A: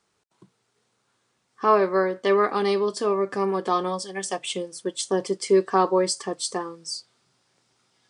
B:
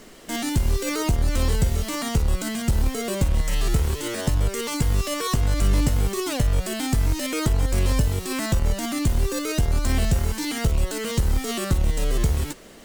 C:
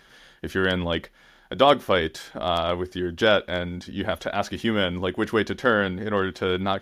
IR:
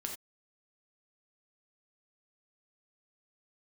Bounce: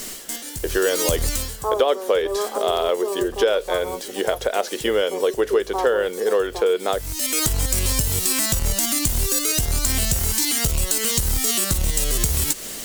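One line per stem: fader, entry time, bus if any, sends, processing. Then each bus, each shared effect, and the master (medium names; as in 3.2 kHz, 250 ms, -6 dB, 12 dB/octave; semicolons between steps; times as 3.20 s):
-0.5 dB, 0.00 s, no send, Chebyshev band-pass 420–940 Hz, order 2
+1.5 dB, 0.00 s, no send, treble shelf 2.3 kHz +8.5 dB; gain riding within 5 dB 0.5 s; auto duck -20 dB, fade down 0.30 s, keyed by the first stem
+2.0 dB, 0.20 s, no send, resonant high-pass 450 Hz, resonance Q 4.9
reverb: none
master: treble shelf 4.9 kHz +11 dB; compression 4:1, threshold -17 dBFS, peak gain reduction 12.5 dB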